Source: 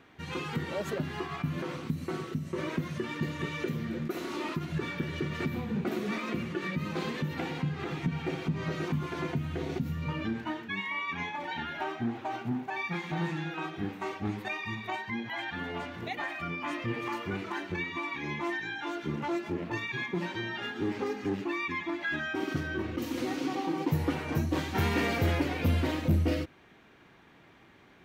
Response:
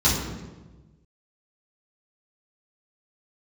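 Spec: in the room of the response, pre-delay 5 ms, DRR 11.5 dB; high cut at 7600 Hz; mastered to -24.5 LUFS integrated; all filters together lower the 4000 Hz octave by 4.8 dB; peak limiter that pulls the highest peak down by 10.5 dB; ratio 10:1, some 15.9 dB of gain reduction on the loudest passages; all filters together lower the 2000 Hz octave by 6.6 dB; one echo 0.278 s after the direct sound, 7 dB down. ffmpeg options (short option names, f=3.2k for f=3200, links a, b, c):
-filter_complex "[0:a]lowpass=7.6k,equalizer=f=2k:t=o:g=-7.5,equalizer=f=4k:t=o:g=-3,acompressor=threshold=-39dB:ratio=10,alimiter=level_in=14dB:limit=-24dB:level=0:latency=1,volume=-14dB,aecho=1:1:278:0.447,asplit=2[a][b];[1:a]atrim=start_sample=2205,adelay=5[c];[b][c]afir=irnorm=-1:irlink=0,volume=-28dB[d];[a][d]amix=inputs=2:normalize=0,volume=19.5dB"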